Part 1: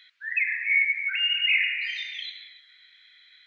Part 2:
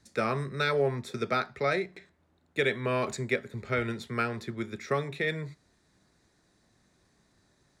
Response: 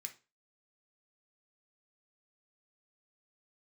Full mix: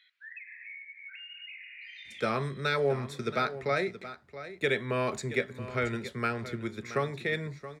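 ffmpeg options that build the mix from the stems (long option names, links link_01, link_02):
-filter_complex "[0:a]highshelf=frequency=4700:gain=-7.5,acompressor=threshold=-35dB:ratio=20,volume=-9.5dB,asplit=2[link_01][link_02];[link_02]volume=-7.5dB[link_03];[1:a]adelay=2050,volume=-1dB,asplit=2[link_04][link_05];[link_05]volume=-13.5dB[link_06];[2:a]atrim=start_sample=2205[link_07];[link_03][link_07]afir=irnorm=-1:irlink=0[link_08];[link_06]aecho=0:1:675:1[link_09];[link_01][link_04][link_08][link_09]amix=inputs=4:normalize=0"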